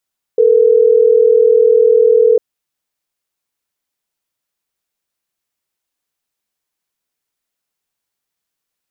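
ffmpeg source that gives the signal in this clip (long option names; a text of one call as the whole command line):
ffmpeg -f lavfi -i "aevalsrc='0.355*(sin(2*PI*440*t)+sin(2*PI*480*t))*clip(min(mod(t,6),2-mod(t,6))/0.005,0,1)':duration=3.12:sample_rate=44100" out.wav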